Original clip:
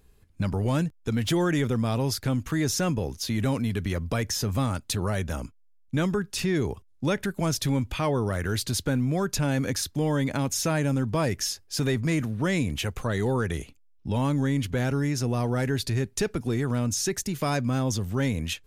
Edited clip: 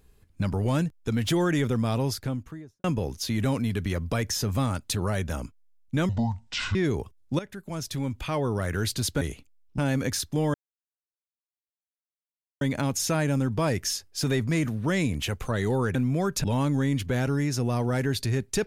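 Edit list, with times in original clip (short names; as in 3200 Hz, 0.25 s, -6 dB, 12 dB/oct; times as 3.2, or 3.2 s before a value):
1.94–2.84 studio fade out
6.09–6.46 speed 56%
7.1–8.42 fade in, from -14.5 dB
8.92–9.41 swap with 13.51–14.08
10.17 insert silence 2.07 s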